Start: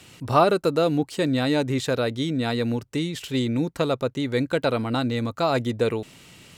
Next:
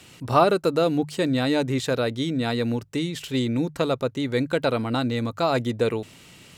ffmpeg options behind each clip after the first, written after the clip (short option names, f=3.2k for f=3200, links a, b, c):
-af "bandreject=f=50:t=h:w=6,bandreject=f=100:t=h:w=6,bandreject=f=150:t=h:w=6"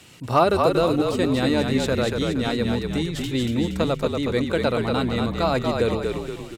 -filter_complex "[0:a]asplit=7[a][b][c][d][e][f][g];[b]adelay=235,afreqshift=-41,volume=-4dB[h];[c]adelay=470,afreqshift=-82,volume=-10.2dB[i];[d]adelay=705,afreqshift=-123,volume=-16.4dB[j];[e]adelay=940,afreqshift=-164,volume=-22.6dB[k];[f]adelay=1175,afreqshift=-205,volume=-28.8dB[l];[g]adelay=1410,afreqshift=-246,volume=-35dB[m];[a][h][i][j][k][l][m]amix=inputs=7:normalize=0,asoftclip=type=hard:threshold=-6.5dB"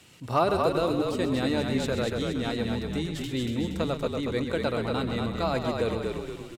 -af "aecho=1:1:130:0.316,volume=-6dB"